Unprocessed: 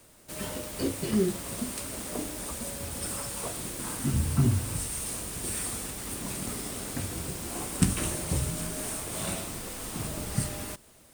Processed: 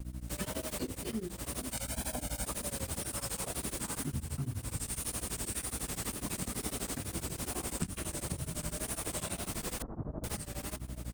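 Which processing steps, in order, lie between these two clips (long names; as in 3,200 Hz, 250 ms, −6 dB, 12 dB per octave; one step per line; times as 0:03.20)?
camcorder AGC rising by 14 dB per second
mains hum 60 Hz, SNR 11 dB
0:01.73–0:02.45: comb filter 1.3 ms, depth 85%
tape wow and flutter 82 cents
slap from a distant wall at 140 metres, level −21 dB
downward compressor 4 to 1, threshold −33 dBFS, peak gain reduction 15 dB
0:09.82–0:10.24: Bessel low-pass filter 750 Hz, order 8
tremolo along a rectified sine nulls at 12 Hz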